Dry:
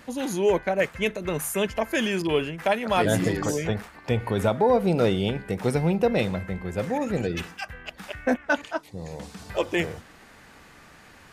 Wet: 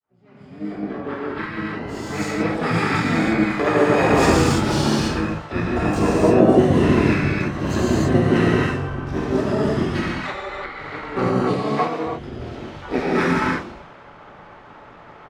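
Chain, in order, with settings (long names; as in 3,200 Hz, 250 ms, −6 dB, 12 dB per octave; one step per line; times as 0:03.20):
fade in at the beginning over 2.49 s
reverb whose tail is shaped and stops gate 270 ms flat, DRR −7.5 dB
low-pass that shuts in the quiet parts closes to 2,600 Hz, open at −13 dBFS
gain on a spectral selection 0:08.51–0:08.72, 850–4,100 Hz −8 dB
wrong playback speed 45 rpm record played at 33 rpm
low-shelf EQ 150 Hz −11 dB
pitch-shifted copies added −7 semitones −2 dB, +7 semitones −17 dB, +12 semitones −16 dB
level −1 dB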